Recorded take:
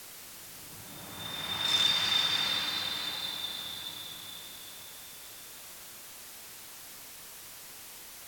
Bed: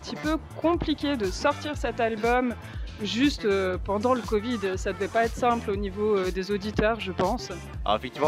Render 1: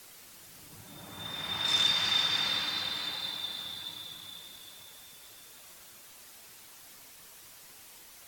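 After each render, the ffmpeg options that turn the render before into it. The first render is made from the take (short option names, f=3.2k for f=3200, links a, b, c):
-af "afftdn=nr=6:nf=-48"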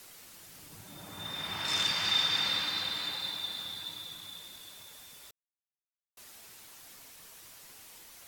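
-filter_complex "[0:a]asettb=1/sr,asplit=3[a][b][c];[a]atrim=end=1.484[d];[b]atrim=start=1.48:end=2.05,asetpts=PTS-STARTPTS,afade=t=in:d=0.004:c=qsin,afade=t=out:st=0.566:d=0.004:c=qsin,bandreject=f=3.7k:w=12[e];[c]atrim=start=2.046[f];[d][e]acrossfade=d=0.004:c1=hsin:c2=qsin[g];[g][f]acrossfade=d=0.004:c1=qsin:c2=hsin,asplit=3[h][i][j];[h]atrim=end=5.31,asetpts=PTS-STARTPTS,afade=t=out:st=5.306:d=0.004:c=hsin[k];[i]atrim=start=5.31:end=6.17,asetpts=PTS-STARTPTS,volume=0[l];[j]atrim=start=6.17,asetpts=PTS-STARTPTS,afade=t=in:d=0.004:c=hsin[m];[k][l][m]concat=n=3:v=0:a=1"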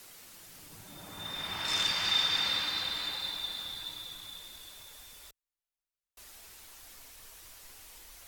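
-af "asubboost=boost=7.5:cutoff=53"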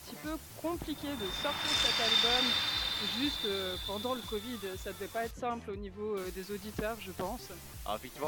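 -filter_complex "[1:a]volume=-12.5dB[a];[0:a][a]amix=inputs=2:normalize=0"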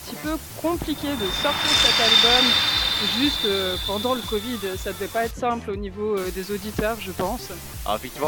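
-af "volume=12dB"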